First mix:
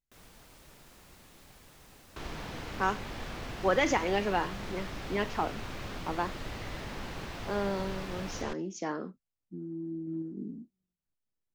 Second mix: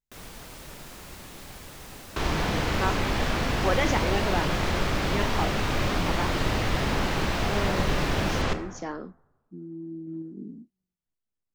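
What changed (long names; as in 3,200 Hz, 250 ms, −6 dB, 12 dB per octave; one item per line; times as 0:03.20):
first sound +11.5 dB
second sound +11.5 dB
reverb: on, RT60 1.3 s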